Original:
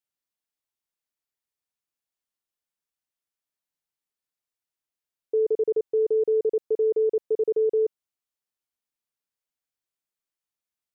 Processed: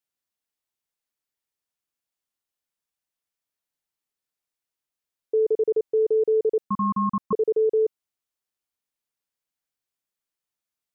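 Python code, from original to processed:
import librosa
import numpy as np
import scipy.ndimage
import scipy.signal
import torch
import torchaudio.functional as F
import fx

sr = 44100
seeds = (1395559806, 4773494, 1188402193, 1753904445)

y = fx.ring_mod(x, sr, carrier_hz=640.0, at=(6.64, 7.33))
y = F.gain(torch.from_numpy(y), 1.5).numpy()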